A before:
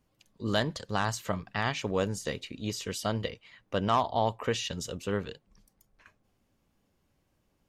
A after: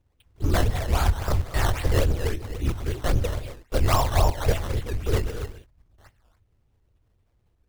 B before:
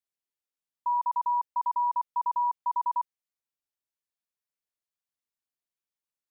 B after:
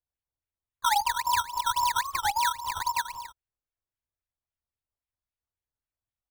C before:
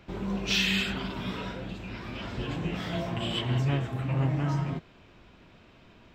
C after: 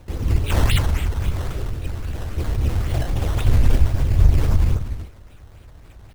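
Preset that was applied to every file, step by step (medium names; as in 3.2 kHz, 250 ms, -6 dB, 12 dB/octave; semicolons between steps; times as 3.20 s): peaking EQ 1.1 kHz -3 dB 1.6 oct; hum notches 50/100/150 Hz; gated-style reverb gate 310 ms rising, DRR 8 dB; in parallel at -3 dB: companded quantiser 4-bit; on the sum: band-stop 2.9 kHz, Q 17; LPC vocoder at 8 kHz whisper; decimation with a swept rate 13×, swing 100% 3.7 Hz; resonant low shelf 130 Hz +9 dB, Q 1.5; warped record 45 rpm, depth 250 cents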